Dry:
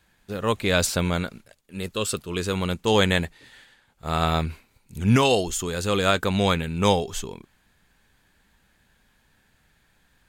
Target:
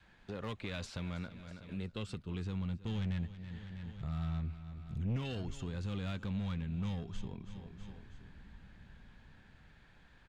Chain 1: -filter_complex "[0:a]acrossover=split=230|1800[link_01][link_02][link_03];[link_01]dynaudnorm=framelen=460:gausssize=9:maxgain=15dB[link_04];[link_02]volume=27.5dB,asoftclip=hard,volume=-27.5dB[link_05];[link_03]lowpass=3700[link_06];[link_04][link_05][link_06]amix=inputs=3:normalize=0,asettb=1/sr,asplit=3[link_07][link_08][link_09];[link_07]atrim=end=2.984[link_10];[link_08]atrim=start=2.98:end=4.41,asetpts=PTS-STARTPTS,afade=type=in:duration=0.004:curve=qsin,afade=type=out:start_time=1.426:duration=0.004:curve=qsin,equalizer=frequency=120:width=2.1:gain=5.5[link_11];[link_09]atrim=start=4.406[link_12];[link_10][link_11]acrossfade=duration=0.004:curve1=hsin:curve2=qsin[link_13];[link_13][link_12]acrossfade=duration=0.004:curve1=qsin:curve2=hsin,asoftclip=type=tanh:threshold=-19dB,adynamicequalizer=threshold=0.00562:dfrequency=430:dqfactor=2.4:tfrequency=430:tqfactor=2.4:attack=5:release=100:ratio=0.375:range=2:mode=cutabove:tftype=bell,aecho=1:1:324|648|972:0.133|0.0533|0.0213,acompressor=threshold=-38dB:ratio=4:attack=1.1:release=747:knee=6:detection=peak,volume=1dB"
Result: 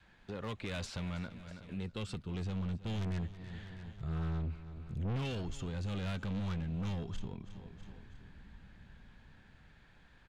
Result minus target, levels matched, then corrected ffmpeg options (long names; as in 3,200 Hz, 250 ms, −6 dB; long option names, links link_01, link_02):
soft clipping: distortion +8 dB
-filter_complex "[0:a]acrossover=split=230|1800[link_01][link_02][link_03];[link_01]dynaudnorm=framelen=460:gausssize=9:maxgain=15dB[link_04];[link_02]volume=27.5dB,asoftclip=hard,volume=-27.5dB[link_05];[link_03]lowpass=3700[link_06];[link_04][link_05][link_06]amix=inputs=3:normalize=0,asettb=1/sr,asplit=3[link_07][link_08][link_09];[link_07]atrim=end=2.984[link_10];[link_08]atrim=start=2.98:end=4.41,asetpts=PTS-STARTPTS,afade=type=in:duration=0.004:curve=qsin,afade=type=out:start_time=1.426:duration=0.004:curve=qsin,equalizer=frequency=120:width=2.1:gain=5.5[link_11];[link_09]atrim=start=4.406[link_12];[link_10][link_11]acrossfade=duration=0.004:curve1=hsin:curve2=qsin[link_13];[link_13][link_12]acrossfade=duration=0.004:curve1=qsin:curve2=hsin,asoftclip=type=tanh:threshold=-8.5dB,adynamicequalizer=threshold=0.00562:dfrequency=430:dqfactor=2.4:tfrequency=430:tqfactor=2.4:attack=5:release=100:ratio=0.375:range=2:mode=cutabove:tftype=bell,aecho=1:1:324|648|972:0.133|0.0533|0.0213,acompressor=threshold=-38dB:ratio=4:attack=1.1:release=747:knee=6:detection=peak,volume=1dB"